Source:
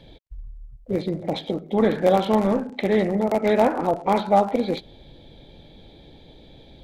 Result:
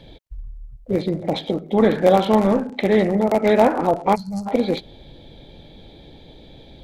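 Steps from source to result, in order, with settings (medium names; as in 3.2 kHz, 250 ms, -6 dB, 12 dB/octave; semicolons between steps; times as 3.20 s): time-frequency box 4.15–4.46 s, 200–4100 Hz -26 dB; trim +3.5 dB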